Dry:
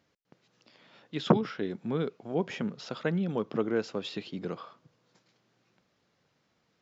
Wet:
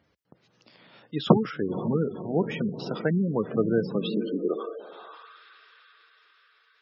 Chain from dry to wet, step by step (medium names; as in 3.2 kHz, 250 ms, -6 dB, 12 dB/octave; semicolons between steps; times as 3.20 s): echo that smears into a reverb 518 ms, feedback 53%, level -10.5 dB; high-pass sweep 60 Hz -> 1.6 kHz, 3.37–5.47 s; spectral gate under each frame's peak -20 dB strong; trim +4 dB